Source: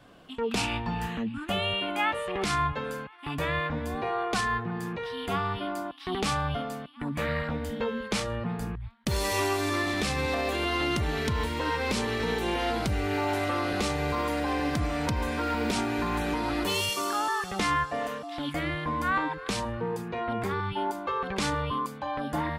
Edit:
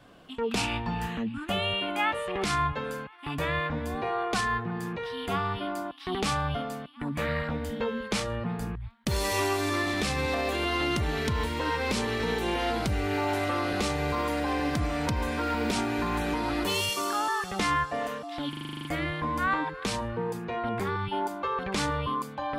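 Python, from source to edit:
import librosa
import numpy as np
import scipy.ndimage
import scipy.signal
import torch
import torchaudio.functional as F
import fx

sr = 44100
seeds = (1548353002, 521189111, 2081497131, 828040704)

y = fx.edit(x, sr, fx.stutter(start_s=18.49, slice_s=0.04, count=10), tone=tone)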